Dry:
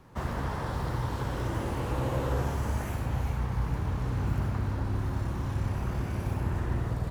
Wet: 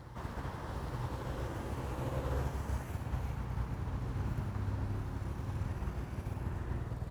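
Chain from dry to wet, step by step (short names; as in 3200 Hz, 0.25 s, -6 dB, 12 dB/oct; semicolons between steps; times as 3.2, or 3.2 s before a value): on a send: reverse echo 0.876 s -6.5 dB; on the sum: upward expander 1.5:1, over -36 dBFS; gain -6.5 dB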